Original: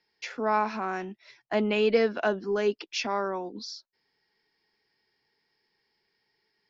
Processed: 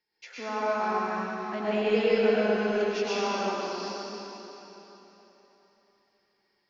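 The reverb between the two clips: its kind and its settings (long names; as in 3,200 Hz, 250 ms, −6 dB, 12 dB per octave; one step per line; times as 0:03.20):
dense smooth reverb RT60 3.7 s, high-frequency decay 0.9×, pre-delay 90 ms, DRR −9.5 dB
level −9.5 dB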